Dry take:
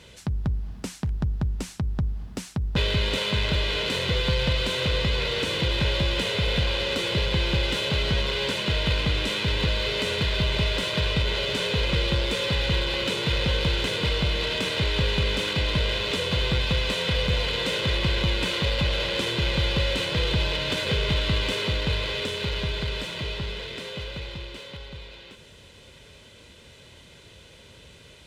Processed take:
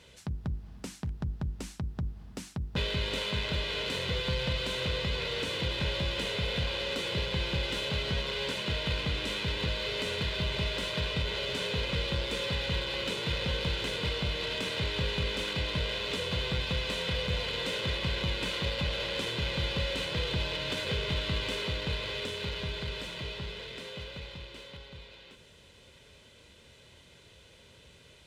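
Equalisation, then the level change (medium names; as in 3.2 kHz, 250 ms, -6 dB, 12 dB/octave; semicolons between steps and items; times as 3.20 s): hum notches 50/100/150/200/250/300/350 Hz; -6.5 dB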